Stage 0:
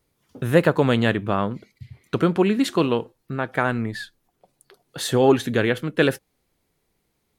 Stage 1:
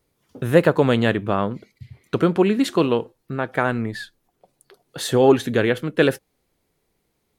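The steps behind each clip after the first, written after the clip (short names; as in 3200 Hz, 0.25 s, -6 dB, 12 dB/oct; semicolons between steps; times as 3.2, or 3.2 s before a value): bell 470 Hz +2.5 dB 1.4 oct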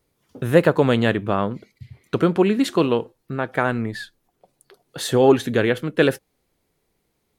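nothing audible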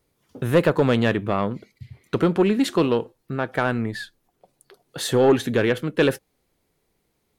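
soft clip -9 dBFS, distortion -16 dB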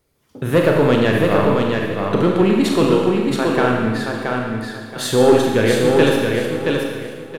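feedback echo 0.675 s, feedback 26%, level -4 dB; Schroeder reverb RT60 1.4 s, combs from 28 ms, DRR 0.5 dB; gain +2 dB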